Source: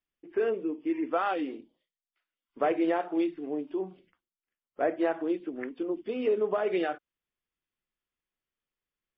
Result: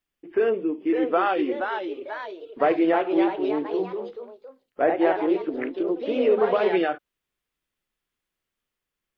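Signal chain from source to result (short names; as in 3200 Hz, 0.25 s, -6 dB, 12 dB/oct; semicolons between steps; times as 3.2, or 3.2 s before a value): echoes that change speed 0.599 s, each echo +2 st, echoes 3, each echo -6 dB; gain +6 dB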